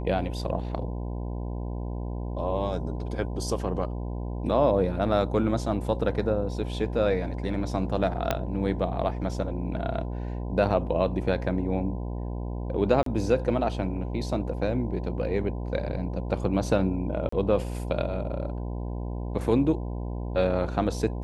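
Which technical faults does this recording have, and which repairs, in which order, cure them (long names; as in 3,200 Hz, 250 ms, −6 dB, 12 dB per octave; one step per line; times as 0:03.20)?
mains buzz 60 Hz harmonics 17 −32 dBFS
0:08.31: click −10 dBFS
0:13.03–0:13.06: drop-out 33 ms
0:17.29–0:17.32: drop-out 34 ms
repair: click removal
hum removal 60 Hz, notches 17
repair the gap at 0:13.03, 33 ms
repair the gap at 0:17.29, 34 ms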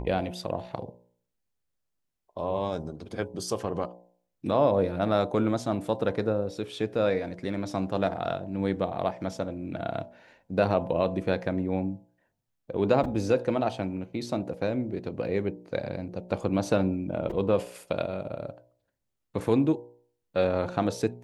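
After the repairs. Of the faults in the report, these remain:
0:08.31: click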